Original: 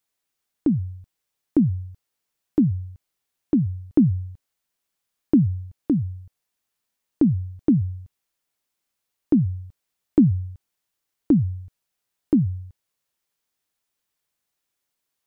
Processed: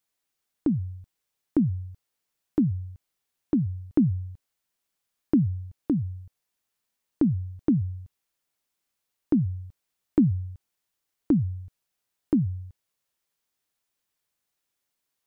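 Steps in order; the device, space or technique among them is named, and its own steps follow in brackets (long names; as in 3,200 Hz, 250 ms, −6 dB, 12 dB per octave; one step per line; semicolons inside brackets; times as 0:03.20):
parallel compression (in parallel at −4 dB: downward compressor, threshold −28 dBFS, peak gain reduction 15.5 dB)
on the sum: level −5.5 dB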